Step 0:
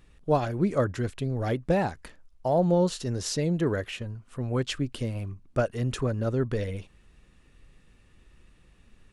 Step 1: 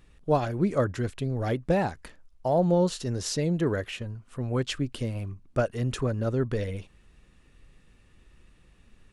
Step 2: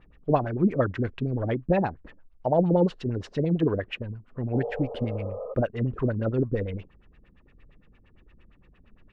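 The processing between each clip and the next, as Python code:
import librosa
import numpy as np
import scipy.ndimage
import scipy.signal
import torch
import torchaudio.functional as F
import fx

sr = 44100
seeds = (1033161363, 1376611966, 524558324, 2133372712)

y1 = x
y2 = fx.filter_lfo_lowpass(y1, sr, shape='sine', hz=8.7, low_hz=230.0, high_hz=2900.0, q=1.9)
y2 = fx.spec_repair(y2, sr, seeds[0], start_s=4.58, length_s=0.93, low_hz=420.0, high_hz=1300.0, source='both')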